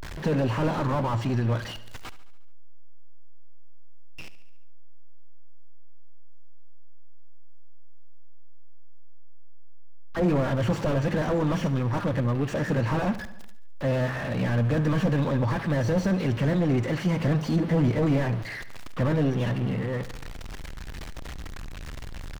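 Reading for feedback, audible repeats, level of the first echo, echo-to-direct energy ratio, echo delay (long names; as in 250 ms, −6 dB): 59%, 5, −15.5 dB, −13.5 dB, 71 ms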